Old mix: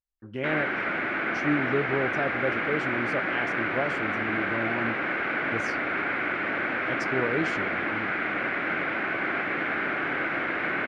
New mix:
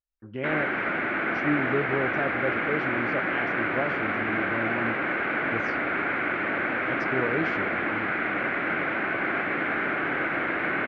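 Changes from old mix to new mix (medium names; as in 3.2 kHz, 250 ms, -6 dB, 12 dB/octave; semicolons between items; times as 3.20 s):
background: send +11.0 dB; master: add distance through air 190 m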